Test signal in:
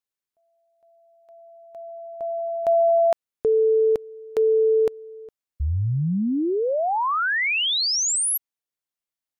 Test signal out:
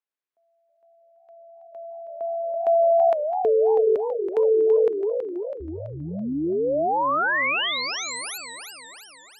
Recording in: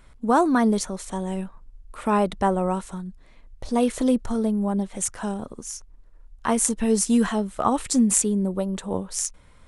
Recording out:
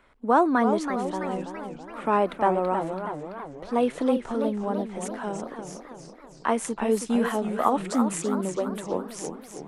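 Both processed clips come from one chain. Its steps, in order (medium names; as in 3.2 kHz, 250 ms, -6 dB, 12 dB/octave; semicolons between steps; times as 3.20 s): three-band isolator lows -16 dB, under 240 Hz, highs -14 dB, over 3.3 kHz; modulated delay 327 ms, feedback 56%, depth 194 cents, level -8 dB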